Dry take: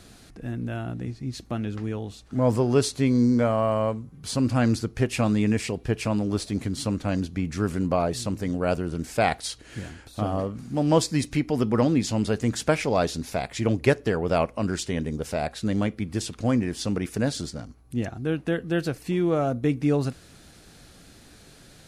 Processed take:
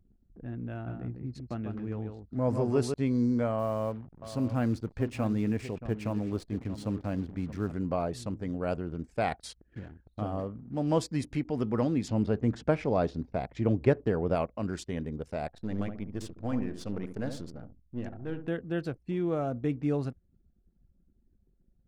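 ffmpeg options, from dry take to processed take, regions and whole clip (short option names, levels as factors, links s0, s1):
-filter_complex "[0:a]asettb=1/sr,asplit=3[s0][s1][s2];[s0]atrim=end=0.724[s3];[s1]atrim=start=0.72:end=2.94,asetpts=PTS-STARTPTS,afade=t=in:d=0.004:c=qsin,afade=t=out:st=2.216:d=0.004:c=qsin,equalizer=f=3300:w=3.2:g=-5,aecho=1:1:148:0.531,atrim=end_sample=97902[s4];[s2]atrim=start=2.936[s5];[s3][s4]acrossfade=d=0.004:c1=hsin:c2=qsin[s6];[s6][s5]acrossfade=d=0.004:c1=qsin:c2=hsin,asettb=1/sr,asplit=3[s7][s8][s9];[s7]atrim=end=3.594[s10];[s8]atrim=start=3.59:end=7.72,asetpts=PTS-STARTPTS,afade=t=in:d=0.004:c=qsin,afade=t=out:st=4.126:d=0.004:c=qsin,highshelf=f=2500:g=-5,acrusher=bits=8:dc=4:mix=0:aa=0.000001,aecho=1:1:628:0.224,atrim=end_sample=182133[s11];[s9]atrim=start=7.716[s12];[s10][s11]acrossfade=d=0.004:c1=hsin:c2=qsin[s13];[s13][s12]acrossfade=d=0.004:c1=qsin:c2=hsin,asettb=1/sr,asplit=3[s14][s15][s16];[s14]atrim=end=12.084[s17];[s15]atrim=start=12.08:end=14.35,asetpts=PTS-STARTPTS,afade=t=in:d=0.004:c=qsin,afade=t=out:st=2.266:d=0.004:c=qsin,acrossover=split=6300[s18][s19];[s19]acompressor=threshold=0.00282:ratio=4:attack=1:release=60[s20];[s18][s20]amix=inputs=2:normalize=0,tiltshelf=f=1300:g=4[s21];[s16]atrim=start=14.346[s22];[s17][s21]acrossfade=d=0.004:c1=hsin:c2=qsin[s23];[s23][s22]acrossfade=d=0.004:c1=qsin:c2=hsin,asettb=1/sr,asplit=3[s24][s25][s26];[s24]atrim=end=15.474[s27];[s25]atrim=start=15.47:end=18.48,asetpts=PTS-STARTPTS,afade=t=in:d=0.004:c=qsin,afade=t=out:st=3.006:d=0.004:c=qsin,aeval=exprs='if(lt(val(0),0),0.447*val(0),val(0))':c=same,asplit=2[s28][s29];[s29]adelay=70,lowpass=f=1400:p=1,volume=0.447,asplit=2[s30][s31];[s31]adelay=70,lowpass=f=1400:p=1,volume=0.37,asplit=2[s32][s33];[s33]adelay=70,lowpass=f=1400:p=1,volume=0.37,asplit=2[s34][s35];[s35]adelay=70,lowpass=f=1400:p=1,volume=0.37[s36];[s28][s30][s32][s34][s36]amix=inputs=5:normalize=0,atrim=end_sample=132741[s37];[s26]atrim=start=18.476[s38];[s27][s37]acrossfade=d=0.004:c1=hsin:c2=qsin[s39];[s39][s38]acrossfade=d=0.004:c1=qsin:c2=hsin,highshelf=f=2200:g=-6.5,anlmdn=0.251,volume=0.473"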